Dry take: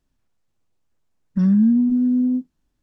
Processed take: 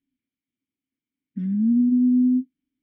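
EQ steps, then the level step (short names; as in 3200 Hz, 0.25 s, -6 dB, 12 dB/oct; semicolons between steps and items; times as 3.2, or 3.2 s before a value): vowel filter i; air absorption 200 m; bell 500 Hz -4 dB 2.5 oct; +7.0 dB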